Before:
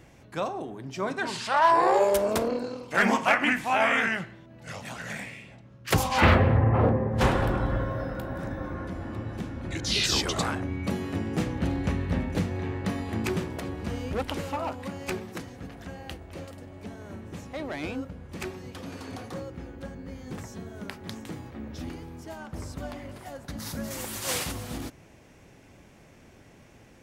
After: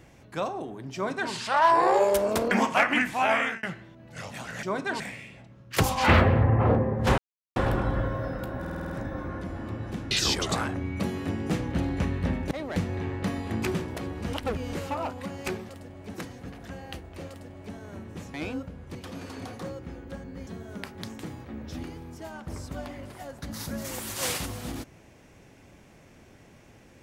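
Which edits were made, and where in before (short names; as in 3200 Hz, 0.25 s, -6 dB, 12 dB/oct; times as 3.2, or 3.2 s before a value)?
0.95–1.32 copy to 5.14
2.51–3.02 cut
3.75–4.14 fade out equal-power
7.32 insert silence 0.38 s
8.36 stutter 0.05 s, 7 plays
9.57–9.98 cut
13.95–14.35 reverse
16.46–16.91 copy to 15.31
17.51–17.76 move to 12.38
18.37–18.66 cut
20.18–20.53 cut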